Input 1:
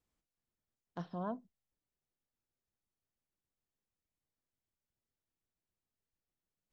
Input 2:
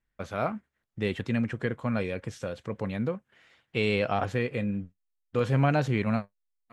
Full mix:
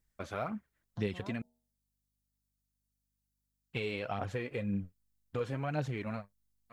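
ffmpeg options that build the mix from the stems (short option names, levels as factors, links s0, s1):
-filter_complex "[0:a]aexciter=amount=2.5:drive=8.9:freq=3600,aeval=exprs='val(0)+0.000178*(sin(2*PI*50*n/s)+sin(2*PI*2*50*n/s)/2+sin(2*PI*3*50*n/s)/3+sin(2*PI*4*50*n/s)/4+sin(2*PI*5*50*n/s)/5)':c=same,bandreject=f=79.23:t=h:w=4,bandreject=f=158.46:t=h:w=4,bandreject=f=237.69:t=h:w=4,bandreject=f=316.92:t=h:w=4,bandreject=f=396.15:t=h:w=4,bandreject=f=475.38:t=h:w=4,bandreject=f=554.61:t=h:w=4,bandreject=f=633.84:t=h:w=4,bandreject=f=713.07:t=h:w=4,bandreject=f=792.3:t=h:w=4,bandreject=f=871.53:t=h:w=4,volume=0.335[s0];[1:a]acompressor=threshold=0.0355:ratio=6,aphaser=in_gain=1:out_gain=1:delay=3.6:decay=0.45:speed=1.9:type=triangular,volume=0.668,asplit=3[s1][s2][s3];[s1]atrim=end=1.42,asetpts=PTS-STARTPTS,afade=t=out:st=1.416:d=0.004:c=hsin[s4];[s2]atrim=start=1.42:end=3.73,asetpts=PTS-STARTPTS,volume=0[s5];[s3]atrim=start=3.73,asetpts=PTS-STARTPTS,afade=t=in:d=0.004:c=hsin[s6];[s4][s5][s6]concat=n=3:v=0:a=1[s7];[s0][s7]amix=inputs=2:normalize=0"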